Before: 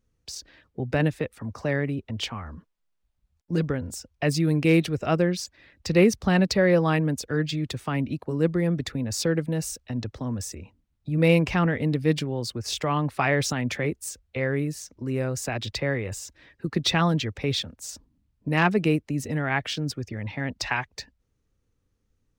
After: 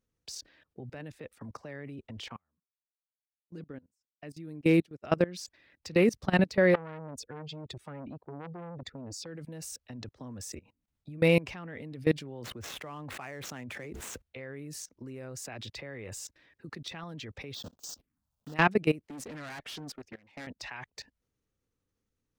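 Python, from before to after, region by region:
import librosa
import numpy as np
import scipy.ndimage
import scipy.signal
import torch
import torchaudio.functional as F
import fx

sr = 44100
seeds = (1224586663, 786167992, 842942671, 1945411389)

y = fx.chain(x, sr, fx.dynamic_eq(hz=250.0, q=1.1, threshold_db=-35.0, ratio=4.0, max_db=7),
    fx.upward_expand(threshold_db=-37.0, expansion=2.5), at=(2.36, 5.04))
y = fx.chain(y, sr, fx.spec_expand(power=1.5),
    fx.transformer_sat(knee_hz=1100.0), at=(6.74, 9.26))
y = fx.chain(y, sr, fx.median_filter(points=9),
    fx.highpass(hz=54.0, slope=6),
    fx.sustainer(db_per_s=40.0), at=(12.43, 14.22))
y = fx.chain(y, sr, fx.block_float(bits=3),
    fx.env_phaser(low_hz=290.0, high_hz=2200.0, full_db=-34.0), at=(17.54, 18.56))
y = fx.chain(y, sr, fx.peak_eq(hz=110.0, db=-10.0, octaves=1.3),
    fx.tube_stage(drive_db=35.0, bias=0.25),
    fx.doppler_dist(depth_ms=0.24), at=(19.07, 20.47))
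y = fx.low_shelf(y, sr, hz=100.0, db=-10.0)
y = fx.level_steps(y, sr, step_db=21)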